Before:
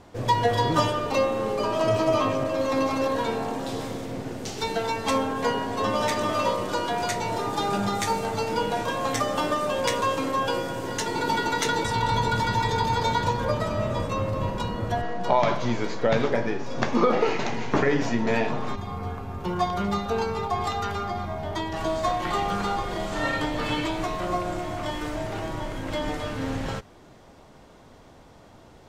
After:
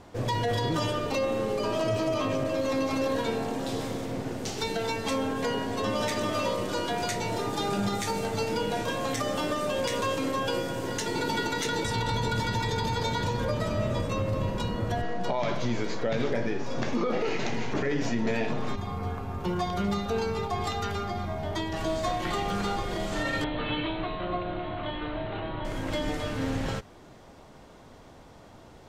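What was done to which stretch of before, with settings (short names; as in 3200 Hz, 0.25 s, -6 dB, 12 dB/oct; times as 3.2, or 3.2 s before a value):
23.44–25.65 rippled Chebyshev low-pass 4100 Hz, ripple 3 dB
whole clip: dynamic EQ 990 Hz, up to -6 dB, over -37 dBFS, Q 1.2; limiter -19 dBFS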